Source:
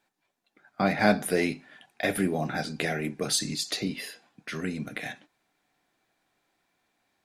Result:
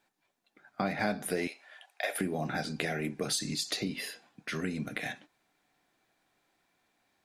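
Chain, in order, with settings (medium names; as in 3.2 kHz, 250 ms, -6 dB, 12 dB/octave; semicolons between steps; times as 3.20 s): 1.47–2.21 s: Chebyshev high-pass 580 Hz, order 3; compression 3:1, threshold -30 dBFS, peak gain reduction 11 dB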